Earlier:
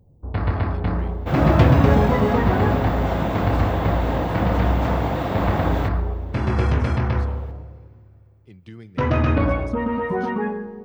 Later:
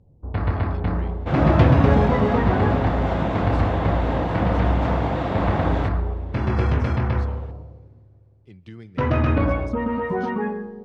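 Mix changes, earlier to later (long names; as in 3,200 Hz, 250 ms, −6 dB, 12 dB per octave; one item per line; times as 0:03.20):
speech: add high-shelf EQ 7,600 Hz +10.5 dB
first sound: send −10.0 dB
master: add high-frequency loss of the air 84 metres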